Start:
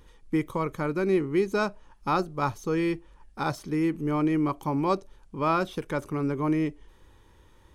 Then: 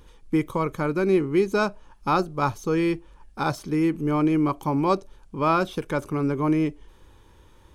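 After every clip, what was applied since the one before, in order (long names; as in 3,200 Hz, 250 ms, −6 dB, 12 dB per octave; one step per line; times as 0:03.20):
notch filter 1,900 Hz, Q 14
level +3.5 dB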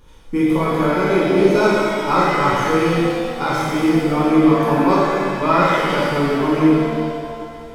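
reverb with rising layers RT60 2.1 s, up +7 semitones, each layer −8 dB, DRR −8 dB
level −1 dB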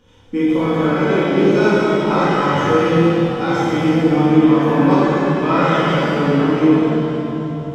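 convolution reverb RT60 3.5 s, pre-delay 3 ms, DRR 1 dB
level −8.5 dB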